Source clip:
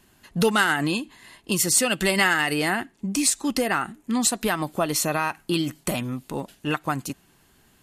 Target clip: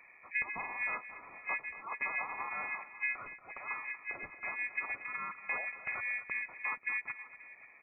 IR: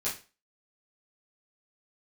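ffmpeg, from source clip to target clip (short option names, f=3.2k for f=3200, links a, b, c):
-filter_complex "[0:a]afftfilt=real='re*(1-between(b*sr/4096,210,2400))':imag='im*(1-between(b*sr/4096,210,2400))':win_size=4096:overlap=0.75,acompressor=threshold=-40dB:ratio=4,aeval=exprs='val(0)*sin(2*PI*780*n/s)':c=same,lowpass=f=2.6k:t=q:w=0.5098,lowpass=f=2.6k:t=q:w=0.6013,lowpass=f=2.6k:t=q:w=0.9,lowpass=f=2.6k:t=q:w=2.563,afreqshift=-3100,aecho=1:1:233|535:0.2|0.133,asplit=2[a][b];[b]asetrate=35002,aresample=44100,atempo=1.25992,volume=-4dB[c];[a][c]amix=inputs=2:normalize=0,volume=6.5dB"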